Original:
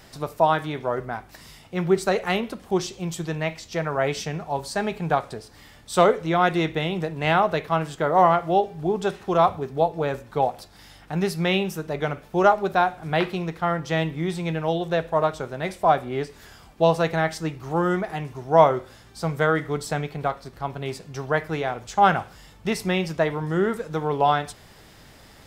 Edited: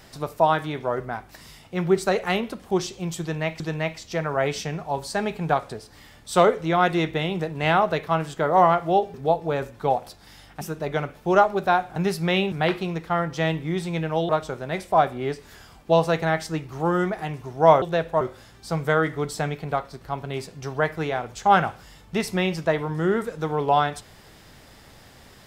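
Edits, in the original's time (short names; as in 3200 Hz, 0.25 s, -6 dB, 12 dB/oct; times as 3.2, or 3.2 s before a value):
3.21–3.6 loop, 2 plays
8.75–9.66 cut
11.13–11.69 move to 13.04
14.81–15.2 move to 18.73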